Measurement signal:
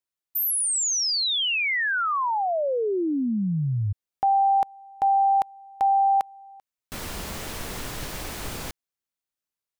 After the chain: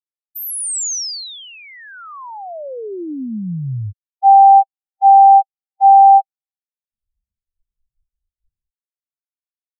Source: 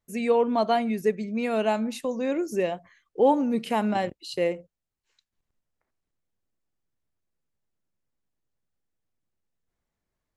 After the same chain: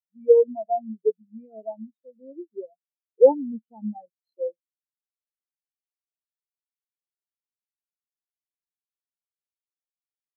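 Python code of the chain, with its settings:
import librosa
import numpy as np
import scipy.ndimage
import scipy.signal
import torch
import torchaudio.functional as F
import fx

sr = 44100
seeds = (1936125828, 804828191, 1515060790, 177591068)

y = fx.bass_treble(x, sr, bass_db=1, treble_db=12)
y = fx.spectral_expand(y, sr, expansion=4.0)
y = F.gain(torch.from_numpy(y), 6.5).numpy()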